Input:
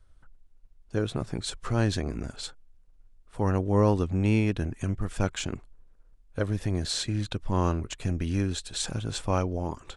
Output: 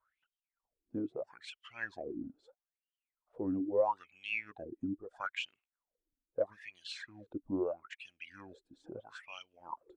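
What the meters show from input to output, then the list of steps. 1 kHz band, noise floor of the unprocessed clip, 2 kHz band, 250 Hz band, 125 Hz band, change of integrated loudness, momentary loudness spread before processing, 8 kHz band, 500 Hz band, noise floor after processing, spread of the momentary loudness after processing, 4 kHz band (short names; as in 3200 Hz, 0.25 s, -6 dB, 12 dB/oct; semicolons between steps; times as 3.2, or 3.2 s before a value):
-7.5 dB, -57 dBFS, -3.5 dB, -11.0 dB, -27.5 dB, -10.5 dB, 10 LU, under -25 dB, -6.5 dB, under -85 dBFS, 16 LU, -12.5 dB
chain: notch 410 Hz, Q 12; wah 0.77 Hz 270–3100 Hz, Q 8.9; reverb removal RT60 1.5 s; gain +5.5 dB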